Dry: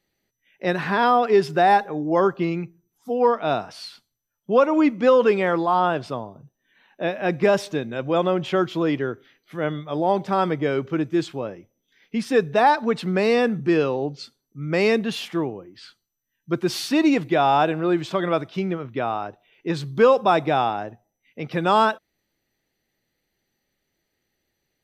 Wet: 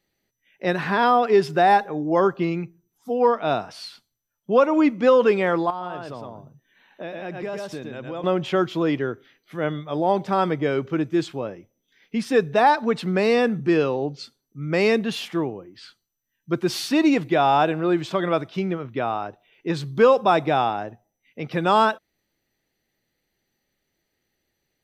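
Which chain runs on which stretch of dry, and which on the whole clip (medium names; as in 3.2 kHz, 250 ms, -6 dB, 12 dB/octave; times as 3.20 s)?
5.70–8.24 s: delay 111 ms -5 dB + compression 2.5:1, threshold -33 dBFS
whole clip: none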